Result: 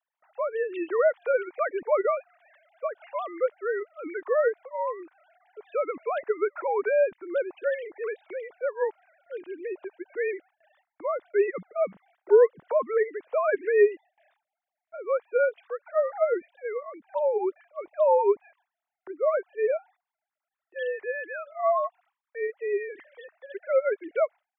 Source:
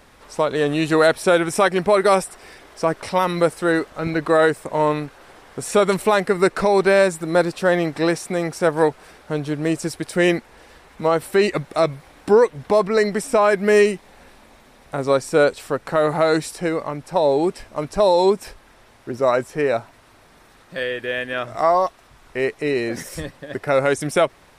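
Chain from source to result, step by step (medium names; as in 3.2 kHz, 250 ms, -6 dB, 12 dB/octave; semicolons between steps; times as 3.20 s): formants replaced by sine waves; gate with hold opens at -49 dBFS; trim -8 dB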